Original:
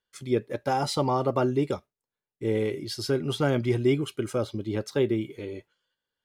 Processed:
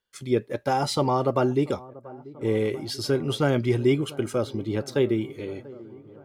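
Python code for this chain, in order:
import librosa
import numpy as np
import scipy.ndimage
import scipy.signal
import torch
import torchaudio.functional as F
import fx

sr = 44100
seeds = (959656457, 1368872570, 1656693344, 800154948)

y = fx.echo_wet_lowpass(x, sr, ms=688, feedback_pct=69, hz=1300.0, wet_db=-20)
y = y * 10.0 ** (2.0 / 20.0)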